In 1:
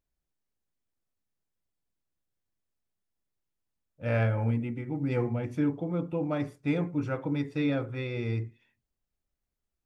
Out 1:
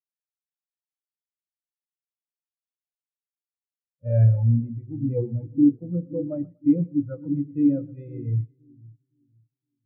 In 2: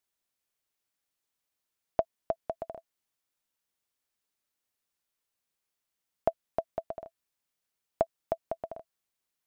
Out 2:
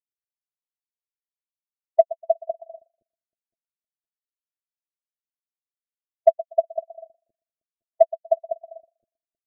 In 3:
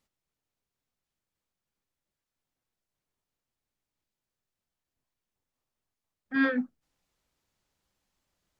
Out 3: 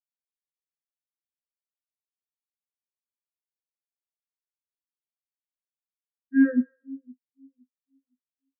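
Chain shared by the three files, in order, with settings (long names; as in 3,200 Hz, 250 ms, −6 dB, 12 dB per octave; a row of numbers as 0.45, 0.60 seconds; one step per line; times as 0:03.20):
running median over 9 samples
on a send: echo with a time of its own for lows and highs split 400 Hz, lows 514 ms, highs 121 ms, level −9.5 dB
on the sum: hard clipping −21.5 dBFS
every bin expanded away from the loudest bin 2.5 to 1
loudness normalisation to −24 LKFS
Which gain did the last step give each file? +12.5, +18.5, +11.5 decibels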